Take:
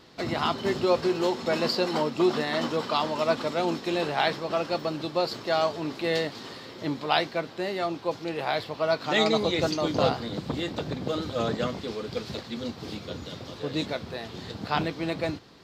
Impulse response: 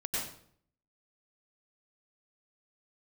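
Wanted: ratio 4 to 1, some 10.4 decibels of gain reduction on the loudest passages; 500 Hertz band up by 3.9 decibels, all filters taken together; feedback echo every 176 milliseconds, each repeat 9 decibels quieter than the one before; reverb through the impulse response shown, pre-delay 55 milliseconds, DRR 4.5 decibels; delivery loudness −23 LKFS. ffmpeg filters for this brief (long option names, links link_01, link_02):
-filter_complex "[0:a]equalizer=frequency=500:width_type=o:gain=5,acompressor=threshold=-28dB:ratio=4,aecho=1:1:176|352|528|704:0.355|0.124|0.0435|0.0152,asplit=2[link_01][link_02];[1:a]atrim=start_sample=2205,adelay=55[link_03];[link_02][link_03]afir=irnorm=-1:irlink=0,volume=-9dB[link_04];[link_01][link_04]amix=inputs=2:normalize=0,volume=7dB"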